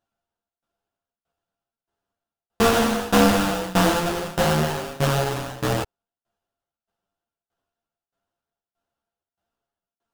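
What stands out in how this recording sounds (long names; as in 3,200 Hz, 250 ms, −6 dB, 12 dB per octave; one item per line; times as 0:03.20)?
a buzz of ramps at a fixed pitch in blocks of 64 samples
tremolo saw down 1.6 Hz, depth 95%
aliases and images of a low sample rate 2,200 Hz, jitter 20%
a shimmering, thickened sound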